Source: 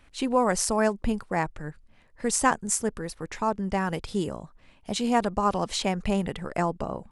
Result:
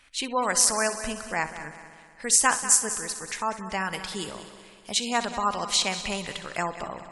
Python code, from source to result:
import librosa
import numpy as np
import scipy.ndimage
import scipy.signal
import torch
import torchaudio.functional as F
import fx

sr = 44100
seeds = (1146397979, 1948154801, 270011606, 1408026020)

y = fx.tilt_shelf(x, sr, db=-9.0, hz=970.0)
y = fx.echo_heads(y, sr, ms=63, heads='first and third', feedback_pct=64, wet_db=-14)
y = fx.spec_gate(y, sr, threshold_db=-30, keep='strong')
y = y * librosa.db_to_amplitude(-1.0)